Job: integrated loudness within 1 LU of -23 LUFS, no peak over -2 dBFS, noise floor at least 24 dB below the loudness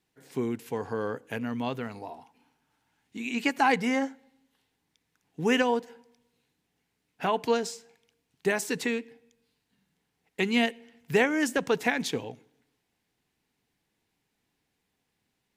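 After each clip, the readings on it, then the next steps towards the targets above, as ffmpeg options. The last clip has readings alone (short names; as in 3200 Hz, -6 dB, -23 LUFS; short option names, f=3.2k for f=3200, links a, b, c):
loudness -28.5 LUFS; peak -10.0 dBFS; loudness target -23.0 LUFS
-> -af "volume=5.5dB"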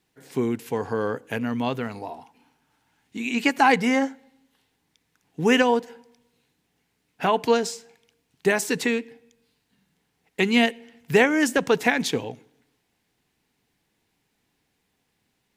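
loudness -23.0 LUFS; peak -4.5 dBFS; noise floor -74 dBFS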